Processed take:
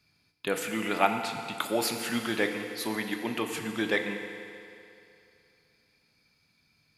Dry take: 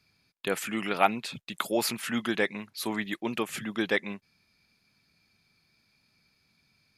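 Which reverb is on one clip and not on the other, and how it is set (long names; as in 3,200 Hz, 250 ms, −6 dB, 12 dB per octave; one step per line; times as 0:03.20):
feedback delay network reverb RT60 2.7 s, low-frequency decay 0.75×, high-frequency decay 0.95×, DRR 4.5 dB
level −1 dB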